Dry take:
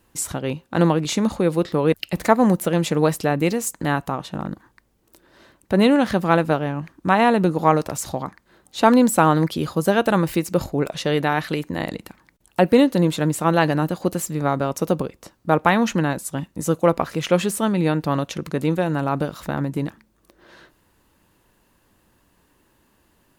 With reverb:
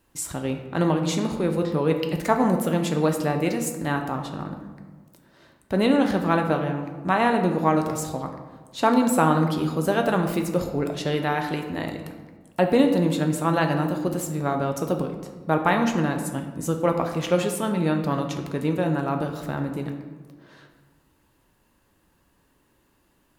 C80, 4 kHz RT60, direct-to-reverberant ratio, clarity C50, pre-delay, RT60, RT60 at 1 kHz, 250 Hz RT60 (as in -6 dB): 9.0 dB, 0.80 s, 4.0 dB, 7.0 dB, 3 ms, 1.5 s, 1.3 s, 1.7 s